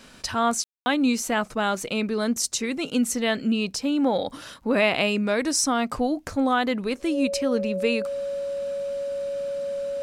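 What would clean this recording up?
de-click; notch 560 Hz, Q 30; room tone fill 0.64–0.86

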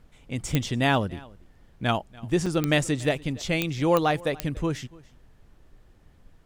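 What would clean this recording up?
de-click; interpolate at 2.46, 4.4 ms; expander -47 dBFS, range -21 dB; inverse comb 0.287 s -23 dB

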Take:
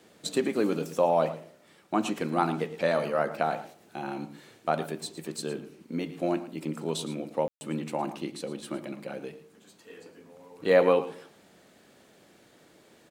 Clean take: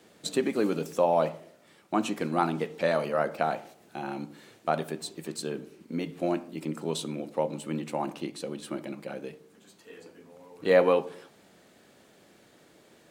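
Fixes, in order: room tone fill 7.48–7.61; inverse comb 0.112 s -14.5 dB

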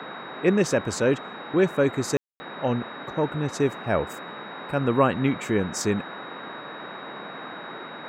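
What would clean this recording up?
notch 3800 Hz, Q 30; room tone fill 2.17–2.4; noise print and reduce 30 dB

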